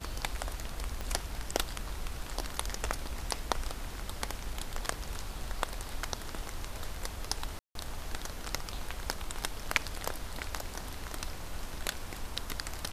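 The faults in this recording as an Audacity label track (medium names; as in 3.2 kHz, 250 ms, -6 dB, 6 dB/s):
1.010000	1.010000	pop -22 dBFS
7.590000	7.750000	dropout 162 ms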